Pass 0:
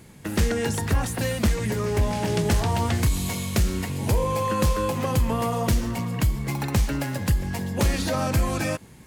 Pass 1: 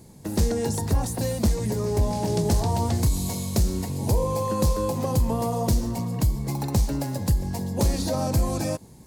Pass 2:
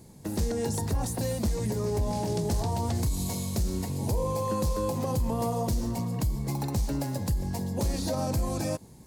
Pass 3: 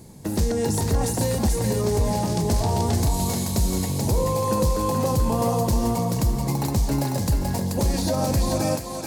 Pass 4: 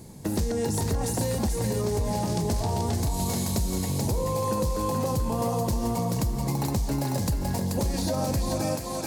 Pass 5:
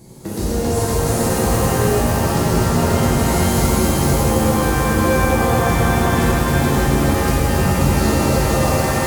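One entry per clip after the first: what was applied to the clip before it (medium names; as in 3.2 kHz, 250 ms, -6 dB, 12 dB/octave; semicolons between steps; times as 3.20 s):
high-order bell 2 kHz -11 dB
peak limiter -18 dBFS, peak gain reduction 5 dB; trim -2.5 dB
thinning echo 433 ms, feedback 35%, high-pass 420 Hz, level -3 dB; trim +6 dB
compression, threshold -23 dBFS, peak gain reduction 6.5 dB
pitch-shifted reverb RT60 3.7 s, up +7 st, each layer -2 dB, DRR -8.5 dB; trim -1 dB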